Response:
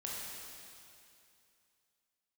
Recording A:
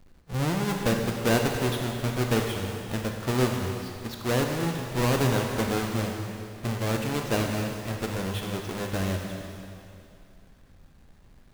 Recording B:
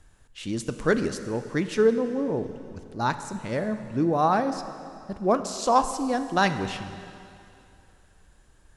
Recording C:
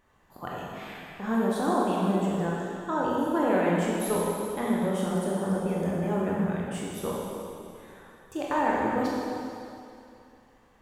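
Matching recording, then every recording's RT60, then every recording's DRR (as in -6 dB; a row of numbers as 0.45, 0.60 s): C; 2.6, 2.6, 2.6 s; 2.0, 9.5, -5.0 dB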